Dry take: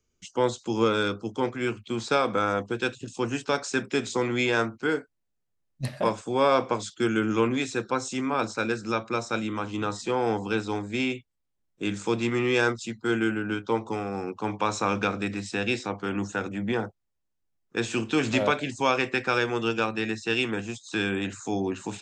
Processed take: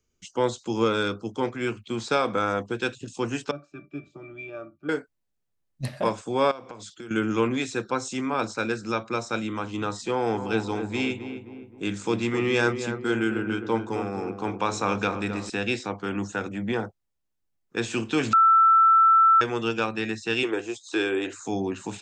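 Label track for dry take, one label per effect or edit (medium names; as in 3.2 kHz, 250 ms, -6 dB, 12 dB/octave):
3.510000	4.890000	pitch-class resonator D, decay 0.13 s
6.510000	7.110000	compression, threshold -37 dBFS
10.080000	15.500000	filtered feedback delay 261 ms, feedback 51%, low-pass 1.4 kHz, level -8 dB
18.330000	19.410000	bleep 1.33 kHz -13.5 dBFS
20.430000	21.470000	resonant low shelf 260 Hz -10 dB, Q 3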